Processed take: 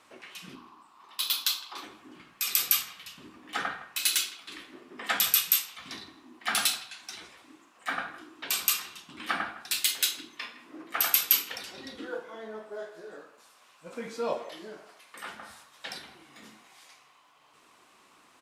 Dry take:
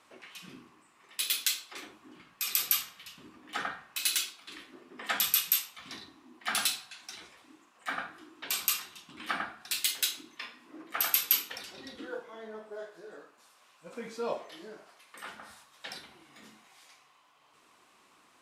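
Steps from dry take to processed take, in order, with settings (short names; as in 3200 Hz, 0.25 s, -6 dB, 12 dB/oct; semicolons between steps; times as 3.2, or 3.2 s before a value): 0.55–1.84 graphic EQ 125/500/1000/2000/4000/8000 Hz -8/-7/+12/-11/+5/-8 dB; speakerphone echo 0.16 s, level -15 dB; gain +3 dB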